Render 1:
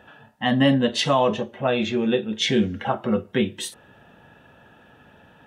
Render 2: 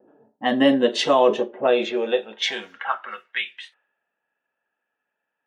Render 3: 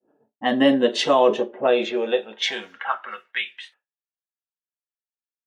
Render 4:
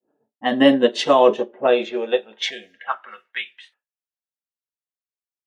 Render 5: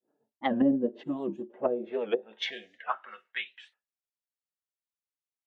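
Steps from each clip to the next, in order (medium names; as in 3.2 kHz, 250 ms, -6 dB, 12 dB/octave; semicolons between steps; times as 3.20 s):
level-controlled noise filter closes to 350 Hz, open at -17.5 dBFS; gate with hold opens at -52 dBFS; high-pass sweep 360 Hz -> 2.2 kHz, 1.64–3.45 s
expander -48 dBFS
time-frequency box 2.50–2.87 s, 750–1600 Hz -24 dB; upward expansion 1.5:1, over -32 dBFS; trim +4 dB
time-frequency box 1.03–1.50 s, 380–6700 Hz -23 dB; low-pass that closes with the level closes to 320 Hz, closed at -13.5 dBFS; warped record 78 rpm, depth 160 cents; trim -6.5 dB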